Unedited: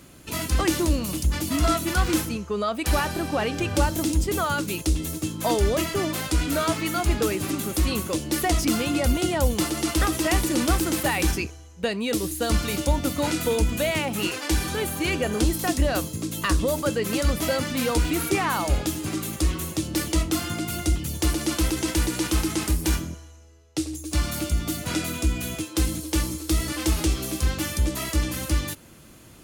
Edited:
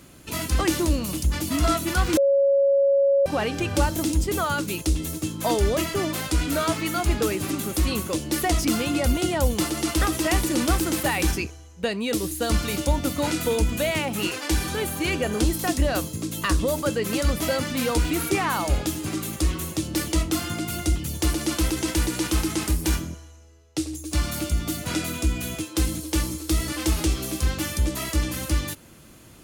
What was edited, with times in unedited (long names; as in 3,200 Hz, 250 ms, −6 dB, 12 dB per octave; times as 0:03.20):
0:02.17–0:03.26: beep over 555 Hz −15.5 dBFS